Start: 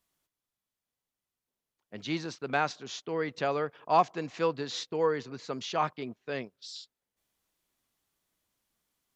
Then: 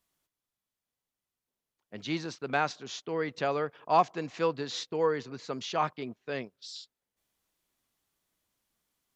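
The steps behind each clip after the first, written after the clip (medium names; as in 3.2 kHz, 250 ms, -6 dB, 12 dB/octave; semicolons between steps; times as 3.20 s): no audible change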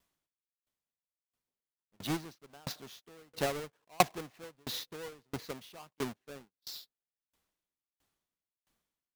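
square wave that keeps the level; sawtooth tremolo in dB decaying 1.5 Hz, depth 37 dB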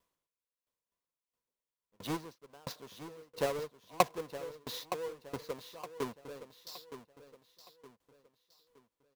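small resonant body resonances 490/1000 Hz, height 10 dB, ringing for 25 ms; on a send: feedback delay 917 ms, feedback 38%, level -11.5 dB; on the sum: trim -4 dB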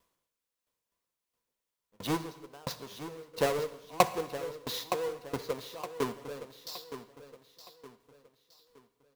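in parallel at -10.5 dB: wavefolder -24.5 dBFS; on the sum: reverberation, pre-delay 3 ms, DRR 12 dB; trim +3 dB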